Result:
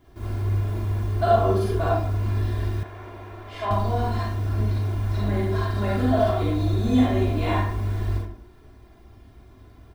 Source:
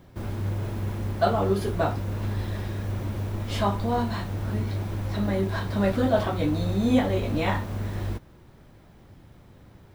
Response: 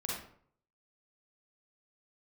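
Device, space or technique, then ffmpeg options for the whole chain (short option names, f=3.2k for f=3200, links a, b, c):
microphone above a desk: -filter_complex "[0:a]aecho=1:1:2.9:0.77[a];[1:a]atrim=start_sample=2205[b];[a][b]afir=irnorm=-1:irlink=0,asettb=1/sr,asplit=3[c][d][e];[c]atrim=end=2.834[f];[d]atrim=start=2.83:end=3.71,asetpts=PTS-STARTPTS,afade=t=in:d=0.004:c=qsin,afade=t=out:st=0.876:d=0.004:c=qsin,acrossover=split=390 3000:gain=0.141 1 0.224[g][h][i];[g][h][i]amix=inputs=3:normalize=0[j];[e]atrim=start=3.706[k];[f][j]acrossfade=d=0.004:c1=hsin:c2=qsin[l];[l][k]acrossfade=d=0.004:c1=qsin:c2=hsin,volume=-4dB"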